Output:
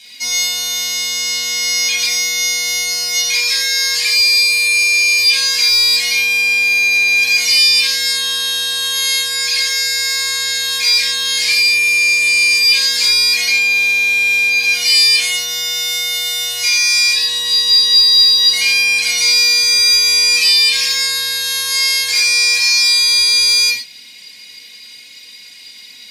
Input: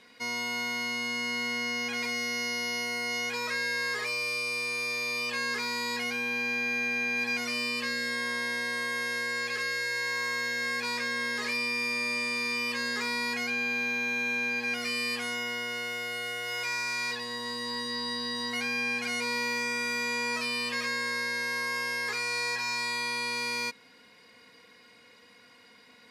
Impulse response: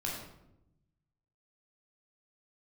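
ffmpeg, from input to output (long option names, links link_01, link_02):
-filter_complex "[1:a]atrim=start_sample=2205,atrim=end_sample=6174[link_01];[0:a][link_01]afir=irnorm=-1:irlink=0,aexciter=amount=8.7:drive=8.3:freq=2200,asettb=1/sr,asplit=3[link_02][link_03][link_04];[link_02]atrim=end=18.004[link_05];[link_03]atrim=start=18:end=18.42,asetpts=PTS-STARTPTS,afade=type=in:duration=0.004:curve=qsin,afade=type=out:start_time=0.416:duration=0.004:curve=qsin,aeval=exprs='sgn(val(0))*max(abs(val(0))-0.02,0)':channel_layout=same[link_06];[link_04]atrim=start=18.416[link_07];[link_05][link_06]acrossfade=duration=0.004:curve1=hsin:curve2=qsin[link_08];[link_08][link_07]acrossfade=duration=0.004:curve1=qsin:curve2=hsin,volume=-2dB"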